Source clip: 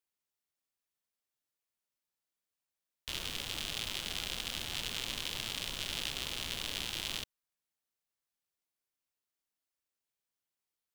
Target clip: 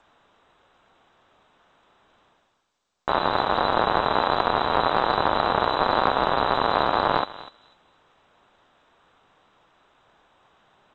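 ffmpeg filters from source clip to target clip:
-filter_complex "[0:a]areverse,acompressor=mode=upward:threshold=0.00251:ratio=2.5,areverse,aexciter=amount=4.2:drive=7.5:freq=2700,asplit=2[s0][s1];[s1]acrusher=bits=5:mode=log:mix=0:aa=0.000001,volume=0.355[s2];[s0][s2]amix=inputs=2:normalize=0,asplit=2[s3][s4];[s4]adelay=246,lowpass=f=1400:p=1,volume=0.282,asplit=2[s5][s6];[s6]adelay=246,lowpass=f=1400:p=1,volume=0.23,asplit=2[s7][s8];[s8]adelay=246,lowpass=f=1400:p=1,volume=0.23[s9];[s3][s5][s7][s9]amix=inputs=4:normalize=0,lowpass=f=3400:t=q:w=0.5098,lowpass=f=3400:t=q:w=0.6013,lowpass=f=3400:t=q:w=0.9,lowpass=f=3400:t=q:w=2.563,afreqshift=-4000,volume=2.24" -ar 16000 -c:a g722

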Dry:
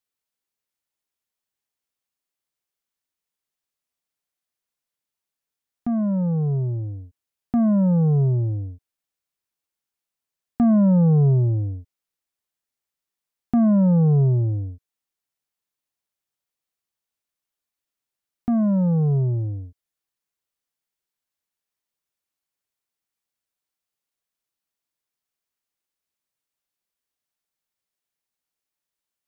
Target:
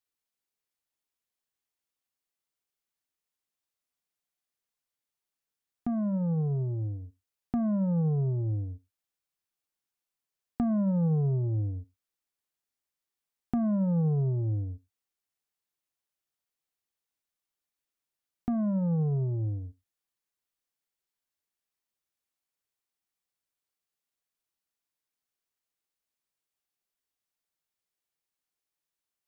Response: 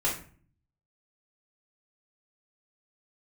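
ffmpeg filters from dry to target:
-filter_complex "[0:a]acompressor=threshold=0.0562:ratio=2.5,asplit=2[s0][s1];[1:a]atrim=start_sample=2205,atrim=end_sample=4410,asetrate=36603,aresample=44100[s2];[s1][s2]afir=irnorm=-1:irlink=0,volume=0.0422[s3];[s0][s3]amix=inputs=2:normalize=0,volume=0.668"

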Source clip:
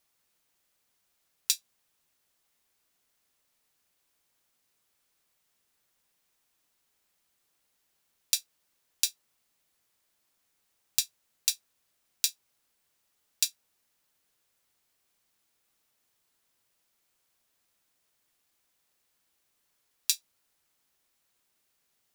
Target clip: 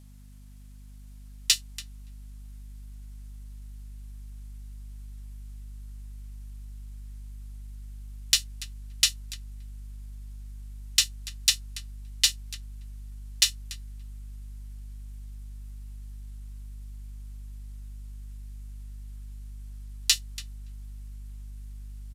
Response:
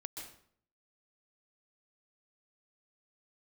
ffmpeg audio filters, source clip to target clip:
-filter_complex "[0:a]aresample=32000,aresample=44100,asplit=2[s0][s1];[s1]adelay=285,lowpass=f=1300:p=1,volume=0.316,asplit=2[s2][s3];[s3]adelay=285,lowpass=f=1300:p=1,volume=0.15[s4];[s2][s4]amix=inputs=2:normalize=0[s5];[s0][s5]amix=inputs=2:normalize=0,acrossover=split=7500[s6][s7];[s7]acompressor=threshold=0.0178:ratio=4:attack=1:release=60[s8];[s6][s8]amix=inputs=2:normalize=0,equalizer=f=11000:w=1.1:g=4.5,asplit=2[s9][s10];[s10]asetrate=33038,aresample=44100,atempo=1.33484,volume=0.794[s11];[s9][s11]amix=inputs=2:normalize=0,aeval=exprs='val(0)+0.00178*(sin(2*PI*50*n/s)+sin(2*PI*2*50*n/s)/2+sin(2*PI*3*50*n/s)/3+sin(2*PI*4*50*n/s)/4+sin(2*PI*5*50*n/s)/5)':c=same,asplit=2[s12][s13];[s13]asoftclip=type=hard:threshold=0.0891,volume=0.596[s14];[s12][s14]amix=inputs=2:normalize=0,asubboost=boost=5:cutoff=72,volume=1.33"

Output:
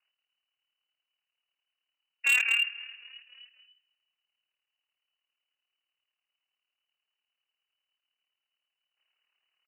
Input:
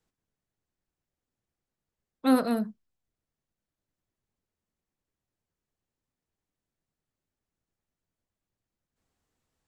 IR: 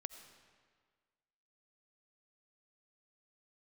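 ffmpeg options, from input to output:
-filter_complex "[0:a]asplit=2[s0][s1];[s1]asplit=4[s2][s3][s4][s5];[s2]adelay=269,afreqshift=-49,volume=0.0891[s6];[s3]adelay=538,afreqshift=-98,volume=0.0507[s7];[s4]adelay=807,afreqshift=-147,volume=0.0288[s8];[s5]adelay=1076,afreqshift=-196,volume=0.0166[s9];[s6][s7][s8][s9]amix=inputs=4:normalize=0[s10];[s0][s10]amix=inputs=2:normalize=0,tremolo=f=37:d=0.71,asplit=2[s11][s12];[s12]aecho=0:1:158|316|474|632:0.0944|0.0453|0.0218|0.0104[s13];[s11][s13]amix=inputs=2:normalize=0,lowpass=f=2600:t=q:w=0.5098,lowpass=f=2600:t=q:w=0.6013,lowpass=f=2600:t=q:w=0.9,lowpass=f=2600:t=q:w=2.563,afreqshift=-3000,asoftclip=type=hard:threshold=0.0631,highpass=500,volume=1.68"

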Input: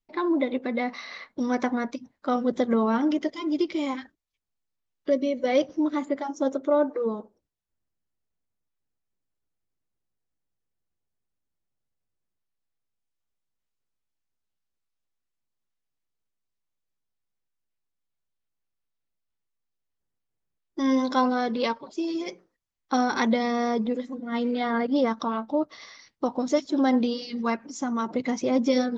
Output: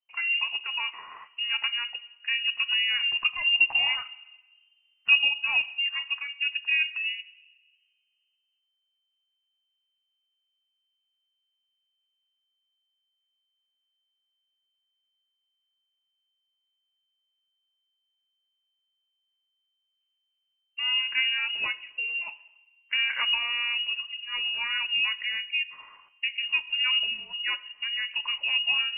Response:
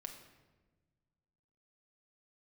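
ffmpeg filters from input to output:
-filter_complex "[0:a]asplit=3[s0][s1][s2];[s0]afade=t=out:st=3.2:d=0.02[s3];[s1]acontrast=70,afade=t=in:st=3.2:d=0.02,afade=t=out:st=5.27:d=0.02[s4];[s2]afade=t=in:st=5.27:d=0.02[s5];[s3][s4][s5]amix=inputs=3:normalize=0,asplit=2[s6][s7];[1:a]atrim=start_sample=2205[s8];[s7][s8]afir=irnorm=-1:irlink=0,volume=0.596[s9];[s6][s9]amix=inputs=2:normalize=0,lowpass=f=2600:t=q:w=0.5098,lowpass=f=2600:t=q:w=0.6013,lowpass=f=2600:t=q:w=0.9,lowpass=f=2600:t=q:w=2.563,afreqshift=-3100,volume=0.501"

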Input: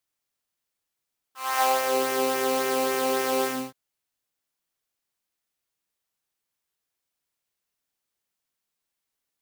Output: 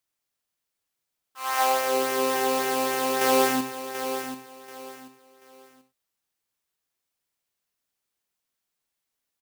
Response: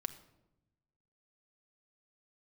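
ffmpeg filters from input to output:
-filter_complex "[0:a]asettb=1/sr,asplit=3[s0][s1][s2];[s0]atrim=end=3.214[s3];[s1]atrim=start=3.21:end=3.61,asetpts=PTS-STARTPTS,afade=t=in:d=0.004:c=qsin,afade=t=out:st=0.396:d=0.004:c=qsin,acontrast=30[s4];[s2]atrim=start=3.606[s5];[s3][s4]acrossfade=d=0.004:c1=hsin:c2=qsin[s6];[s6][s5]acrossfade=d=0.004:c1=qsin:c2=hsin,asplit=2[s7][s8];[s8]aecho=0:1:735|1470|2205:0.335|0.0938|0.0263[s9];[s7][s9]amix=inputs=2:normalize=0"

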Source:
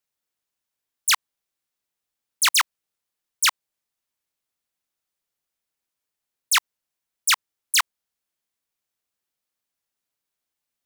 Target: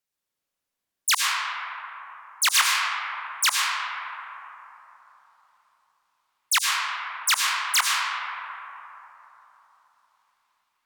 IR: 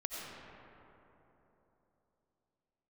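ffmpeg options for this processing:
-filter_complex "[1:a]atrim=start_sample=2205,asetrate=37926,aresample=44100[s0];[0:a][s0]afir=irnorm=-1:irlink=0"

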